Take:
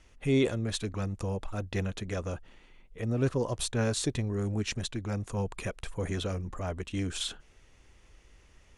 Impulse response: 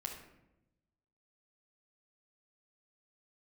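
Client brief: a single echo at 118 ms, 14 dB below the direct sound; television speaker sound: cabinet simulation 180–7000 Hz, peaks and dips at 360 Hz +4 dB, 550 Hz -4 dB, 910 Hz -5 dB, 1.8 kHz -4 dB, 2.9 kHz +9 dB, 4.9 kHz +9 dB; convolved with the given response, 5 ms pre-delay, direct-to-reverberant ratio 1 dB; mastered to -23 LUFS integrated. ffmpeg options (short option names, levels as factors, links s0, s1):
-filter_complex "[0:a]aecho=1:1:118:0.2,asplit=2[s0][s1];[1:a]atrim=start_sample=2205,adelay=5[s2];[s1][s2]afir=irnorm=-1:irlink=0,volume=1[s3];[s0][s3]amix=inputs=2:normalize=0,highpass=f=180:w=0.5412,highpass=f=180:w=1.3066,equalizer=f=360:t=q:w=4:g=4,equalizer=f=550:t=q:w=4:g=-4,equalizer=f=910:t=q:w=4:g=-5,equalizer=f=1800:t=q:w=4:g=-4,equalizer=f=2900:t=q:w=4:g=9,equalizer=f=4900:t=q:w=4:g=9,lowpass=f=7000:w=0.5412,lowpass=f=7000:w=1.3066,volume=2.37"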